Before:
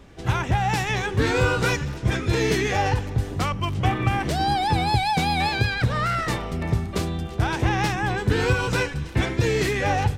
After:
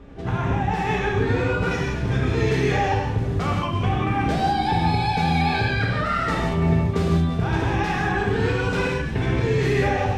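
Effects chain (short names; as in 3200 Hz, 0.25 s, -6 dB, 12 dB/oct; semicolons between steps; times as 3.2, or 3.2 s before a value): LPF 1300 Hz 6 dB/oct, from 1.71 s 2700 Hz; compressor, threshold -25 dBFS, peak gain reduction 9.5 dB; non-linear reverb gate 0.21 s flat, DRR -3.5 dB; gain +2 dB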